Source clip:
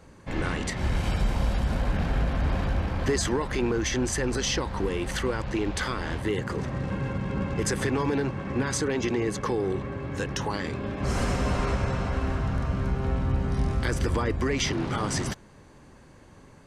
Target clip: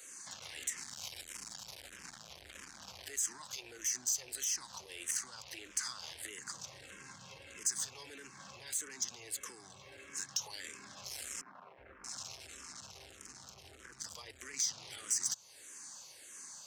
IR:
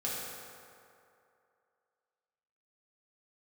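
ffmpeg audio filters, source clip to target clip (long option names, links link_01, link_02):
-filter_complex "[0:a]equalizer=frequency=6500:width_type=o:width=1:gain=10,alimiter=limit=-19dB:level=0:latency=1:release=94,acrossover=split=130[link_01][link_02];[link_02]acompressor=threshold=-43dB:ratio=2.5[link_03];[link_01][link_03]amix=inputs=2:normalize=0,asoftclip=type=tanh:threshold=-31.5dB,highpass=56,aderivative,asettb=1/sr,asplit=3[link_04][link_05][link_06];[link_04]atrim=end=11.414[link_07];[link_05]atrim=start=11.41:end=14,asetpts=PTS-STARTPTS,afade=type=in:duration=0.004:curve=qsin,afade=type=out:start_time=2.586:duration=0.004:curve=qsin,acrossover=split=170|1800[link_08][link_09][link_10];[link_08]adelay=370[link_11];[link_10]adelay=630[link_12];[link_11][link_09][link_12]amix=inputs=3:normalize=0,atrim=end_sample=114219[link_13];[link_06]atrim=start=13.996[link_14];[link_07][link_13]acrossfade=duration=0.004:curve1=hsin:curve2=qsin[link_15];[link_15][link_14]acrossfade=duration=0.004:curve1=qsin:curve2=hsin,asplit=2[link_16][link_17];[link_17]afreqshift=-1.6[link_18];[link_16][link_18]amix=inputs=2:normalize=1,volume=13dB"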